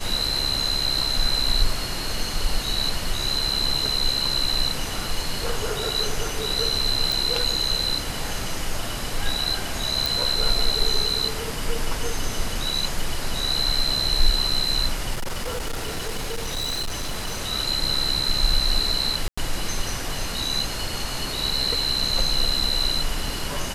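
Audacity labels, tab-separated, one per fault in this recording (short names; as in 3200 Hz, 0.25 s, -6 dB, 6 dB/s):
7.120000	7.120000	pop
10.060000	10.060000	pop
15.140000	17.410000	clipped -23.5 dBFS
19.280000	19.380000	gap 95 ms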